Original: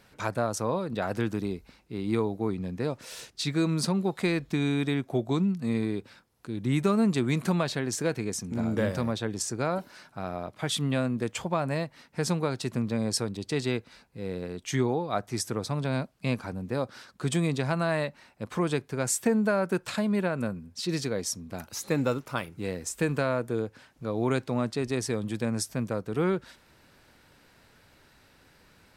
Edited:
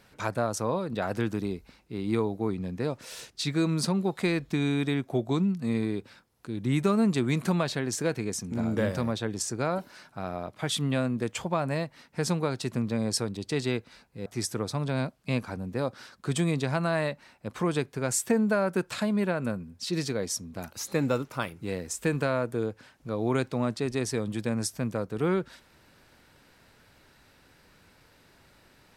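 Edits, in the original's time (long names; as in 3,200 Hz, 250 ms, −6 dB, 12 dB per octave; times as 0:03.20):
0:14.26–0:15.22: remove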